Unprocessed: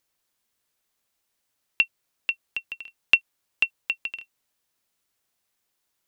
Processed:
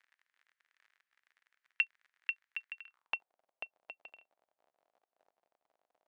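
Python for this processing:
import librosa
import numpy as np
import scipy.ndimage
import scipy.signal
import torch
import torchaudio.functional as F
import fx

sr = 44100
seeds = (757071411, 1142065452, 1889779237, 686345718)

y = fx.dmg_crackle(x, sr, seeds[0], per_s=49.0, level_db=-40.0)
y = fx.filter_sweep_bandpass(y, sr, from_hz=1800.0, to_hz=670.0, start_s=2.77, end_s=3.27, q=3.2)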